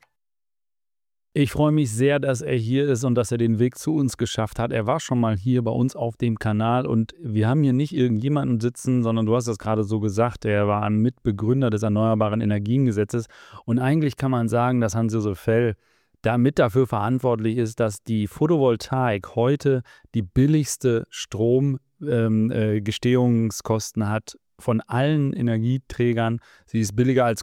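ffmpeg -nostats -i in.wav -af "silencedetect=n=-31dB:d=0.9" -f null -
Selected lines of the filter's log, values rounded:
silence_start: 0.00
silence_end: 1.36 | silence_duration: 1.36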